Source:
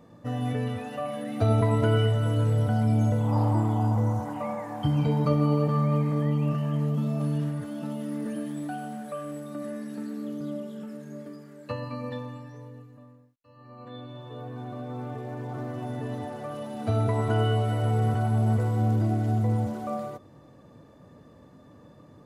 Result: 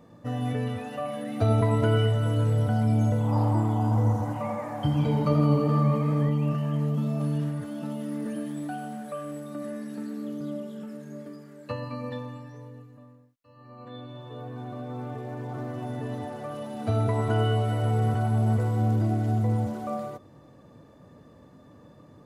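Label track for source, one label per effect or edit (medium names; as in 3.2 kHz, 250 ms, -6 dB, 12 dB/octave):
3.750000	6.290000	modulated delay 83 ms, feedback 65%, depth 81 cents, level -9 dB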